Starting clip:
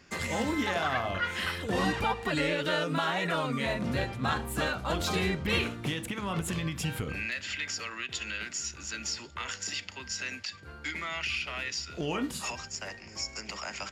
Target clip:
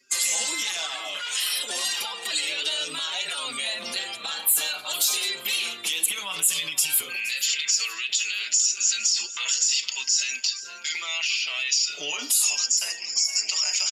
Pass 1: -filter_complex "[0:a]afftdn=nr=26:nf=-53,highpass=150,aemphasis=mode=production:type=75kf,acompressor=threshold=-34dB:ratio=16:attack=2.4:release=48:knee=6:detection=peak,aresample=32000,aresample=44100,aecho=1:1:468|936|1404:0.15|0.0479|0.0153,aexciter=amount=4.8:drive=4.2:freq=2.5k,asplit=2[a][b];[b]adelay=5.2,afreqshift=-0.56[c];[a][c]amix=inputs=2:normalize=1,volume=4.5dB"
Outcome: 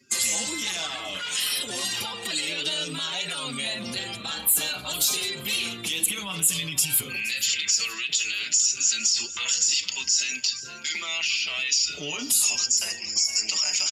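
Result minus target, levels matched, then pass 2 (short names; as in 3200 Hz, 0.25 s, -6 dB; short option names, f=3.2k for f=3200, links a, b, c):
125 Hz band +17.0 dB
-filter_complex "[0:a]afftdn=nr=26:nf=-53,highpass=560,aemphasis=mode=production:type=75kf,acompressor=threshold=-34dB:ratio=16:attack=2.4:release=48:knee=6:detection=peak,aresample=32000,aresample=44100,aecho=1:1:468|936|1404:0.15|0.0479|0.0153,aexciter=amount=4.8:drive=4.2:freq=2.5k,asplit=2[a][b];[b]adelay=5.2,afreqshift=-0.56[c];[a][c]amix=inputs=2:normalize=1,volume=4.5dB"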